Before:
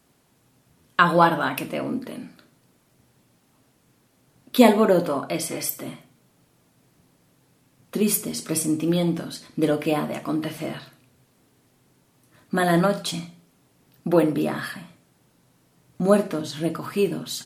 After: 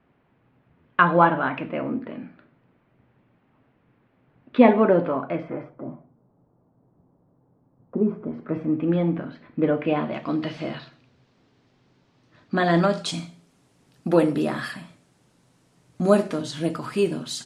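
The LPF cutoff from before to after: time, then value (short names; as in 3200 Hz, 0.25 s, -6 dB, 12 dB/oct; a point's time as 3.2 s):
LPF 24 dB/oct
5.21 s 2500 Hz
5.89 s 1000 Hz
7.95 s 1000 Hz
8.86 s 2300 Hz
9.75 s 2300 Hz
10.38 s 5100 Hz
12.61 s 5100 Hz
13.21 s 9700 Hz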